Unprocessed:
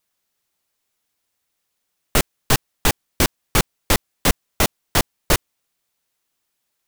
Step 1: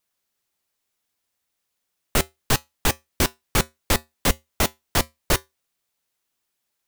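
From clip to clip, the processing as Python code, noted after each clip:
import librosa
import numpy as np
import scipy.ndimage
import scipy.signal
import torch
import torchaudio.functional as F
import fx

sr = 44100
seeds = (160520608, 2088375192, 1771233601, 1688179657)

y = fx.comb_fb(x, sr, f0_hz=77.0, decay_s=0.19, harmonics='odd', damping=0.0, mix_pct=40)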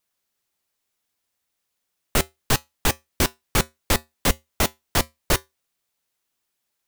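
y = x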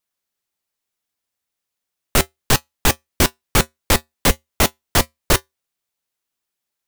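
y = fx.leveller(x, sr, passes=2)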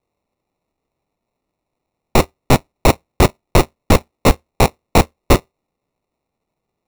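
y = fx.sample_hold(x, sr, seeds[0], rate_hz=1600.0, jitter_pct=0)
y = y * librosa.db_to_amplitude(4.5)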